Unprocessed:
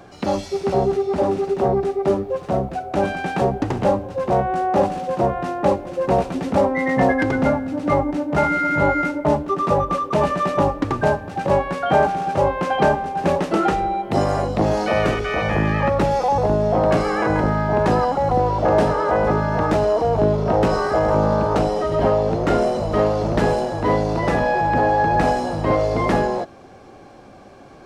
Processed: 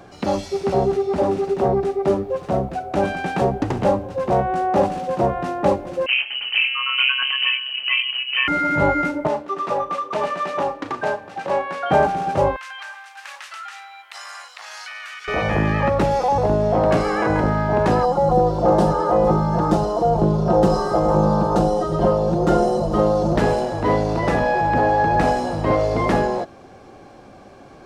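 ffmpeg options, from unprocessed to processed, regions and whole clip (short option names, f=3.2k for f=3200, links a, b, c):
-filter_complex "[0:a]asettb=1/sr,asplit=3[a][b][c];[a]atrim=end=6.064[d];[b]atrim=start=6.06:end=8.48,asetpts=PTS-STARTPTS,afade=t=in:d=0.004:c=qsin,afade=t=out:st=2.416:d=0.004:c=qsin,tremolo=f=130:d=0.571,lowpass=f=2.7k:t=q:w=0.5098,lowpass=f=2.7k:t=q:w=0.6013,lowpass=f=2.7k:t=q:w=0.9,lowpass=f=2.7k:t=q:w=2.563,afreqshift=-3200[e];[c]atrim=start=8.476[f];[d][e]acrossfade=d=0.004:c1=hsin:c2=qsin[g];[g][f]acrossfade=d=0.004:c1=qsin:c2=hsin,asettb=1/sr,asplit=3[h][i][j];[h]atrim=end=9.274[k];[i]atrim=start=9.27:end=11.91,asetpts=PTS-STARTPTS,afade=t=in:d=0.004:c=qsin,afade=t=out:st=2.636:d=0.004:c=qsin,highpass=f=790:p=1,highshelf=f=8.3k:g=-10.5,asplit=2[l][m];[m]adelay=36,volume=-10dB[n];[l][n]amix=inputs=2:normalize=0,atrim=end_sample=116424[o];[j]atrim=start=11.906[p];[k][o]acrossfade=d=0.004:c1=hsin:c2=qsin[q];[q][p]acrossfade=d=0.004:c1=qsin:c2=hsin,asettb=1/sr,asplit=3[r][s][t];[r]atrim=end=12.564[u];[s]atrim=start=12.56:end=15.28,asetpts=PTS-STARTPTS,afade=t=in:d=0.004:c=qsin,afade=t=out:st=2.716:d=0.004:c=qsin,highpass=f=1.4k:w=0.5412,highpass=f=1.4k:w=1.3066,acompressor=threshold=-31dB:ratio=6:attack=3.2:release=140:knee=1:detection=peak[v];[t]atrim=start=15.276[w];[u][v]acrossfade=d=0.004:c1=hsin:c2=qsin[x];[x][w]acrossfade=d=0.004:c1=qsin:c2=hsin,asettb=1/sr,asplit=3[y][z][aa];[y]atrim=end=18.034[ab];[z]atrim=start=18.03:end=23.36,asetpts=PTS-STARTPTS,afade=t=in:d=0.004:c=qsin,afade=t=out:st=5.326:d=0.004:c=qsin,equalizer=f=2.2k:w=1.4:g=-13.5,aecho=1:1:5.7:0.82,atrim=end_sample=235053[ac];[aa]atrim=start=23.356[ad];[ab][ac]acrossfade=d=0.004:c1=hsin:c2=qsin[ae];[ae][ad]acrossfade=d=0.004:c1=qsin:c2=hsin"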